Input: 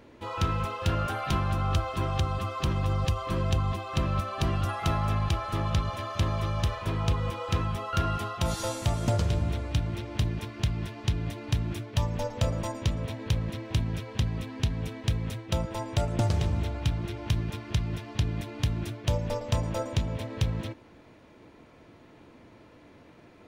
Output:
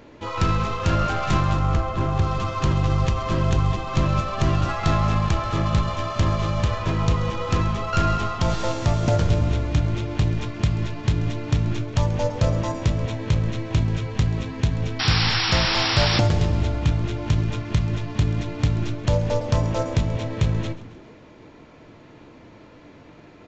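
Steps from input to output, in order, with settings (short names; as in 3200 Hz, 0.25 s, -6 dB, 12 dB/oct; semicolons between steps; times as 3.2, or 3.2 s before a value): tracing distortion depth 0.46 ms; 1.59–2.22 high shelf 2700 Hz -11.5 dB; in parallel at -6 dB: short-mantissa float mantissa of 2-bit; 14.99–16.2 on the sum: painted sound noise 710–5700 Hz -26 dBFS; frequency-shifting echo 0.134 s, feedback 59%, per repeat -110 Hz, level -18 dB; on a send at -11.5 dB: reverb RT60 0.35 s, pre-delay 7 ms; on the sum: downsampling 16000 Hz; gain +2.5 dB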